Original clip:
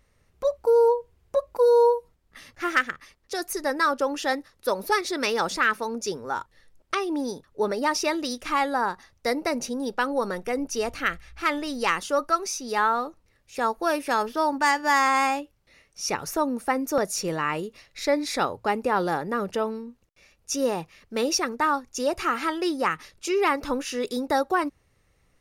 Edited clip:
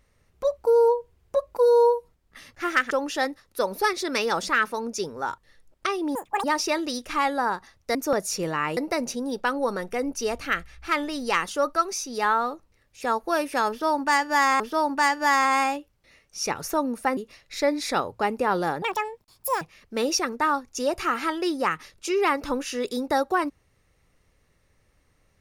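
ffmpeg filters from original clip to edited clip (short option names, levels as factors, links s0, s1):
-filter_complex "[0:a]asplit=10[s0][s1][s2][s3][s4][s5][s6][s7][s8][s9];[s0]atrim=end=2.912[s10];[s1]atrim=start=3.988:end=7.234[s11];[s2]atrim=start=7.23:end=7.8,asetpts=PTS-STARTPTS,asetrate=86877,aresample=44100[s12];[s3]atrim=start=7.796:end=9.312[s13];[s4]atrim=start=16.798:end=17.622[s14];[s5]atrim=start=9.308:end=15.142[s15];[s6]atrim=start=14.228:end=16.802[s16];[s7]atrim=start=17.618:end=19.274[s17];[s8]atrim=start=19.27:end=20.81,asetpts=PTS-STARTPTS,asetrate=85554,aresample=44100,atrim=end_sample=35007,asetpts=PTS-STARTPTS[s18];[s9]atrim=start=20.806[s19];[s10][s11]acrossfade=d=0.004:c1=hsin:c2=hsin[s20];[s20][s12]acrossfade=d=0.004:c1=hsin:c2=hsin[s21];[s21][s13]acrossfade=d=0.004:c1=hsin:c2=hsin[s22];[s22][s14]acrossfade=d=0.004:c1=hsin:c2=hsin[s23];[s23][s15]acrossfade=d=0.004:c1=hsin:c2=hsin[s24];[s24][s16]acrossfade=d=0.004:c1=hsin:c2=hsin[s25];[s25][s17]acrossfade=d=0.004:c1=hsin:c2=hsin[s26];[s26][s18]acrossfade=d=0.004:c1=hsin:c2=hsin[s27];[s27][s19]acrossfade=d=0.004:c1=hsin:c2=hsin"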